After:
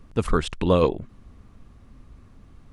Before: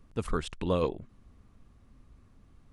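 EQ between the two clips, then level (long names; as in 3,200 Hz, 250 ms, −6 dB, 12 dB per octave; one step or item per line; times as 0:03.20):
high-shelf EQ 7,700 Hz −4.5 dB
+9.0 dB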